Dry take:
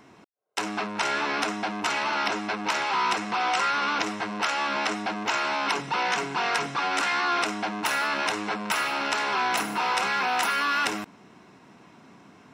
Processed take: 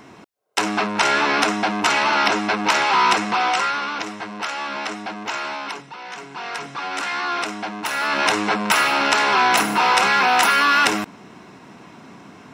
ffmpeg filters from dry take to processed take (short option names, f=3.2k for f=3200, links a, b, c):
-af "volume=28.5dB,afade=t=out:st=3.15:d=0.74:silence=0.354813,afade=t=out:st=5.46:d=0.51:silence=0.298538,afade=t=in:st=5.97:d=1.27:silence=0.251189,afade=t=in:st=7.92:d=0.4:silence=0.398107"